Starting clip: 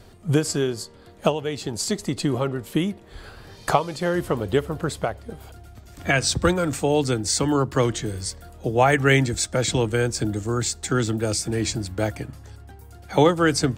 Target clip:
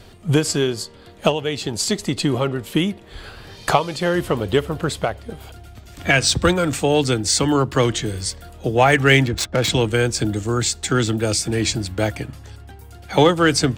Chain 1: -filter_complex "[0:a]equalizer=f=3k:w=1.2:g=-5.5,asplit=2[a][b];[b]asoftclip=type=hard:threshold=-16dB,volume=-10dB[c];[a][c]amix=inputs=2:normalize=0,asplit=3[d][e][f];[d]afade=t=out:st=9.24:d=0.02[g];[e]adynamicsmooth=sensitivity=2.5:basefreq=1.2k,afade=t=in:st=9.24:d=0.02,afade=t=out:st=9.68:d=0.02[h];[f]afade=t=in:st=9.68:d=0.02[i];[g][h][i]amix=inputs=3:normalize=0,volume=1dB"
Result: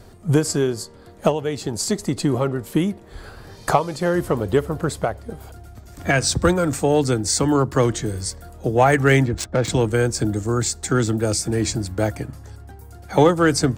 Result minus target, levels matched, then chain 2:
4000 Hz band -6.0 dB
-filter_complex "[0:a]equalizer=f=3k:w=1.2:g=5.5,asplit=2[a][b];[b]asoftclip=type=hard:threshold=-16dB,volume=-10dB[c];[a][c]amix=inputs=2:normalize=0,asplit=3[d][e][f];[d]afade=t=out:st=9.24:d=0.02[g];[e]adynamicsmooth=sensitivity=2.5:basefreq=1.2k,afade=t=in:st=9.24:d=0.02,afade=t=out:st=9.68:d=0.02[h];[f]afade=t=in:st=9.68:d=0.02[i];[g][h][i]amix=inputs=3:normalize=0,volume=1dB"

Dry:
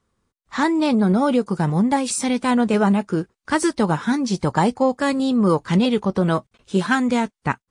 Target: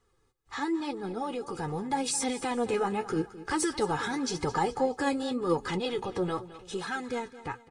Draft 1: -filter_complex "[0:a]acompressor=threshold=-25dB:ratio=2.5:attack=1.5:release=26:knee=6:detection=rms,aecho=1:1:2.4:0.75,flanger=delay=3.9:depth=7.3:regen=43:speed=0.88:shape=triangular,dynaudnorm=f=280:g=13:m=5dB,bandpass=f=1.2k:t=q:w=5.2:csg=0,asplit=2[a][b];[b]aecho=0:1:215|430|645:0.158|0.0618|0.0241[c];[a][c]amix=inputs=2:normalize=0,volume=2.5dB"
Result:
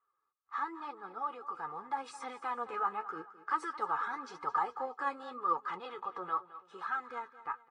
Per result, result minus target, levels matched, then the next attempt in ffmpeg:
compressor: peak gain reduction -6.5 dB; 1000 Hz band +5.5 dB
-filter_complex "[0:a]acompressor=threshold=-36dB:ratio=2.5:attack=1.5:release=26:knee=6:detection=rms,aecho=1:1:2.4:0.75,flanger=delay=3.9:depth=7.3:regen=43:speed=0.88:shape=triangular,dynaudnorm=f=280:g=13:m=5dB,bandpass=f=1.2k:t=q:w=5.2:csg=0,asplit=2[a][b];[b]aecho=0:1:215|430|645:0.158|0.0618|0.0241[c];[a][c]amix=inputs=2:normalize=0,volume=2.5dB"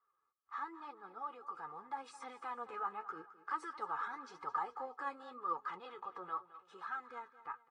1000 Hz band +5.0 dB
-filter_complex "[0:a]acompressor=threshold=-36dB:ratio=2.5:attack=1.5:release=26:knee=6:detection=rms,aecho=1:1:2.4:0.75,flanger=delay=3.9:depth=7.3:regen=43:speed=0.88:shape=triangular,dynaudnorm=f=280:g=13:m=5dB,asplit=2[a][b];[b]aecho=0:1:215|430|645:0.158|0.0618|0.0241[c];[a][c]amix=inputs=2:normalize=0,volume=2.5dB"

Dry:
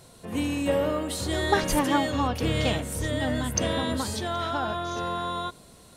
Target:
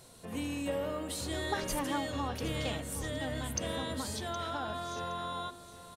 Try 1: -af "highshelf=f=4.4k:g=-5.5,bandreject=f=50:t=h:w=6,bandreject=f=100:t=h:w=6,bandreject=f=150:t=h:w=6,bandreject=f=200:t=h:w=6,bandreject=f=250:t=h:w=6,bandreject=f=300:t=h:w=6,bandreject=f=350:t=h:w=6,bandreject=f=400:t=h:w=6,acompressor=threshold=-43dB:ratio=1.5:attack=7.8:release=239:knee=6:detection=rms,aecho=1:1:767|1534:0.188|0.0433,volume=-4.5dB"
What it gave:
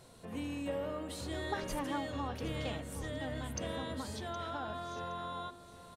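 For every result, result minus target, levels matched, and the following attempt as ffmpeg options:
8000 Hz band -4.5 dB; compressor: peak gain reduction +2.5 dB
-af "highshelf=f=4.4k:g=3,bandreject=f=50:t=h:w=6,bandreject=f=100:t=h:w=6,bandreject=f=150:t=h:w=6,bandreject=f=200:t=h:w=6,bandreject=f=250:t=h:w=6,bandreject=f=300:t=h:w=6,bandreject=f=350:t=h:w=6,bandreject=f=400:t=h:w=6,acompressor=threshold=-43dB:ratio=1.5:attack=7.8:release=239:knee=6:detection=rms,aecho=1:1:767|1534:0.188|0.0433,volume=-4.5dB"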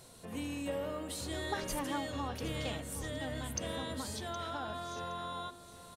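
compressor: peak gain reduction +3 dB
-af "highshelf=f=4.4k:g=3,bandreject=f=50:t=h:w=6,bandreject=f=100:t=h:w=6,bandreject=f=150:t=h:w=6,bandreject=f=200:t=h:w=6,bandreject=f=250:t=h:w=6,bandreject=f=300:t=h:w=6,bandreject=f=350:t=h:w=6,bandreject=f=400:t=h:w=6,acompressor=threshold=-34.5dB:ratio=1.5:attack=7.8:release=239:knee=6:detection=rms,aecho=1:1:767|1534:0.188|0.0433,volume=-4.5dB"

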